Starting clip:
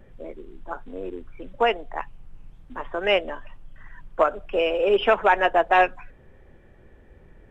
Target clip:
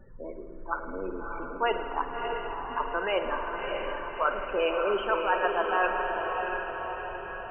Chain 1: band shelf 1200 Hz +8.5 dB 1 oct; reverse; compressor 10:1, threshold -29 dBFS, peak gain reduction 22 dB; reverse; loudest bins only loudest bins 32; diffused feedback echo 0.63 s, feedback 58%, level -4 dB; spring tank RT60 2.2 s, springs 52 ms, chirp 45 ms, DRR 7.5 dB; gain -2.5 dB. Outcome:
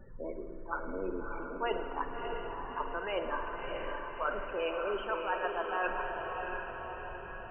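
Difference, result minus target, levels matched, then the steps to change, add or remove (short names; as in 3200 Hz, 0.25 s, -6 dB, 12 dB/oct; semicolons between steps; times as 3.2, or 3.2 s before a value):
compressor: peak gain reduction +7.5 dB
change: compressor 10:1, threshold -20.5 dBFS, peak gain reduction 14 dB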